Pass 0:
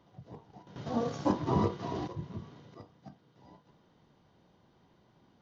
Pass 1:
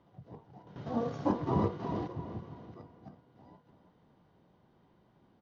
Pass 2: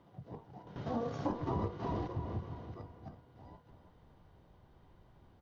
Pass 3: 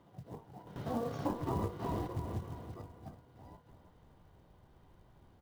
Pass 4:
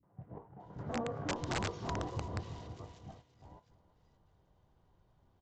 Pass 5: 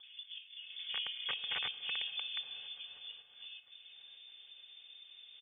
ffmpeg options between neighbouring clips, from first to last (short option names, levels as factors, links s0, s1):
-filter_complex "[0:a]aemphasis=mode=reproduction:type=75kf,asplit=2[s0][s1];[s1]adelay=332,lowpass=f=3400:p=1,volume=0.316,asplit=2[s2][s3];[s3]adelay=332,lowpass=f=3400:p=1,volume=0.4,asplit=2[s4][s5];[s5]adelay=332,lowpass=f=3400:p=1,volume=0.4,asplit=2[s6][s7];[s7]adelay=332,lowpass=f=3400:p=1,volume=0.4[s8];[s2][s4][s6][s8]amix=inputs=4:normalize=0[s9];[s0][s9]amix=inputs=2:normalize=0,volume=0.891"
-af "asubboost=boost=8:cutoff=72,acompressor=threshold=0.0178:ratio=4,volume=1.33"
-af "acrusher=bits=6:mode=log:mix=0:aa=0.000001"
-filter_complex "[0:a]acrossover=split=270|2000[s0][s1][s2];[s1]adelay=30[s3];[s2]adelay=600[s4];[s0][s3][s4]amix=inputs=3:normalize=0,agate=range=0.447:threshold=0.00178:ratio=16:detection=peak,aresample=16000,aeval=exprs='(mod(25.1*val(0)+1,2)-1)/25.1':c=same,aresample=44100"
-af "aecho=1:1:2.9:0.52,acompressor=mode=upward:threshold=0.0112:ratio=2.5,lowpass=f=3100:t=q:w=0.5098,lowpass=f=3100:t=q:w=0.6013,lowpass=f=3100:t=q:w=0.9,lowpass=f=3100:t=q:w=2.563,afreqshift=-3600,volume=0.75"